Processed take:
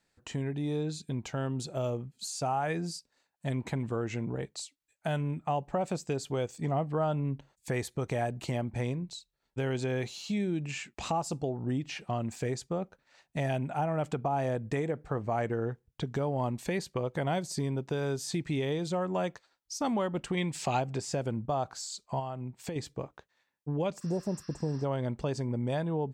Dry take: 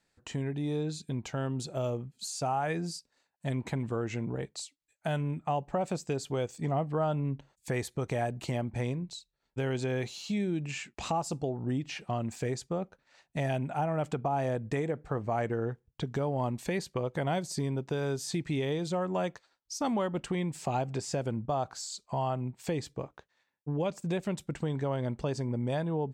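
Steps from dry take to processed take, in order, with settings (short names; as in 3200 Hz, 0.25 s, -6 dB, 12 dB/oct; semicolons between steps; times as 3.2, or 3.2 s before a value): 20.37–20.8 bell 3500 Hz +8.5 dB 2.7 oct; 22.19–22.76 compressor, threshold -34 dBFS, peak gain reduction 7 dB; 24.04–24.82 spectral repair 1000–5900 Hz before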